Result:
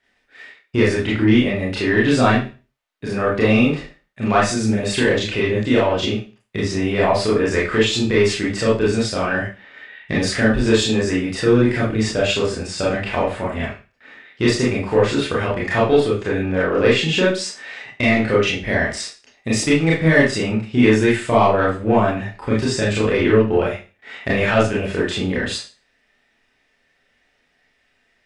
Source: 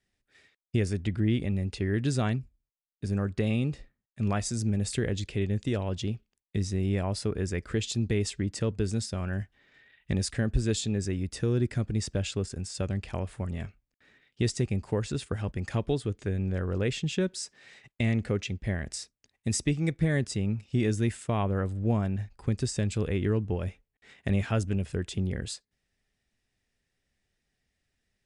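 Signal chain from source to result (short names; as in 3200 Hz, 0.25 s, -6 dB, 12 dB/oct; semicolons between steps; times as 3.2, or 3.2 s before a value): tone controls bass -4 dB, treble -8 dB; overdrive pedal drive 12 dB, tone 3200 Hz, clips at -16 dBFS; Schroeder reverb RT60 0.33 s, combs from 25 ms, DRR -6.5 dB; gain +7.5 dB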